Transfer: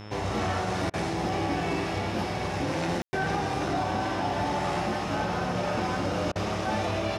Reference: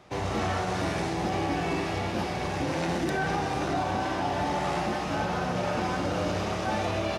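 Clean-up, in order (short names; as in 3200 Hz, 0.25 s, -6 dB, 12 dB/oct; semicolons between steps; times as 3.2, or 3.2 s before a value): de-hum 104.9 Hz, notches 36; notch 5300 Hz, Q 30; room tone fill 3.02–3.13; interpolate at 0.9/3.07/6.32, 35 ms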